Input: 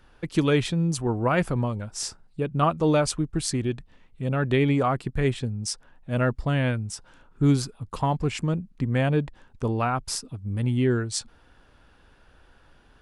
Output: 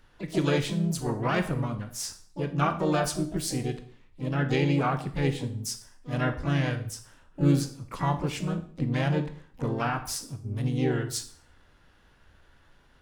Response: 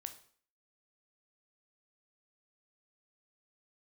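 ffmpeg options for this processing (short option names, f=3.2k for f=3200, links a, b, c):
-filter_complex "[0:a]equalizer=f=550:w=1.2:g=-2.5,asplit=3[a][b][c];[b]asetrate=52444,aresample=44100,atempo=0.840896,volume=-5dB[d];[c]asetrate=88200,aresample=44100,atempo=0.5,volume=-12dB[e];[a][d][e]amix=inputs=3:normalize=0[f];[1:a]atrim=start_sample=2205[g];[f][g]afir=irnorm=-1:irlink=0"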